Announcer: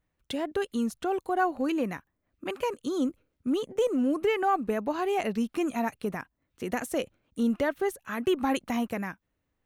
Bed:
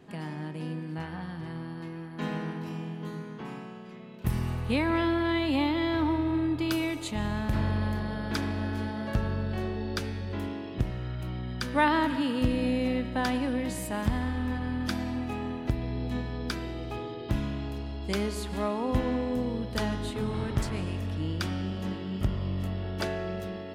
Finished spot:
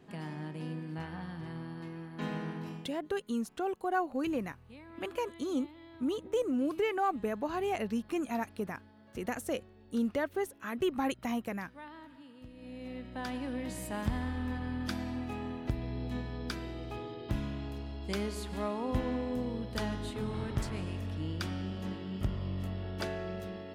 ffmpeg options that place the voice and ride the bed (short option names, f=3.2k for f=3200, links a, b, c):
-filter_complex "[0:a]adelay=2550,volume=-5dB[a];[1:a]volume=16dB,afade=t=out:st=2.66:d=0.28:silence=0.0891251,afade=t=in:st=12.54:d=1.4:silence=0.1[b];[a][b]amix=inputs=2:normalize=0"